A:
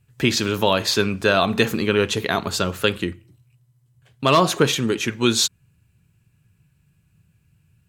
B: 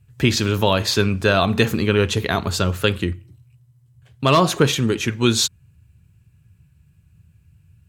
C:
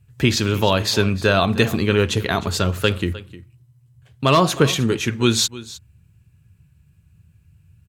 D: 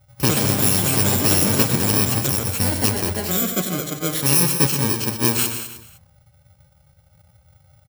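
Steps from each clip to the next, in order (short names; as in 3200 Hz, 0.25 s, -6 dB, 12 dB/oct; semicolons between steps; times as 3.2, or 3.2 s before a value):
bell 72 Hz +12 dB 1.5 oct
echo 0.307 s -17.5 dB
FFT order left unsorted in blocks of 64 samples; loudspeakers at several distances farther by 42 m -9 dB, 70 m -11 dB; echoes that change speed 0.118 s, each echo +5 st, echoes 2; gain -2 dB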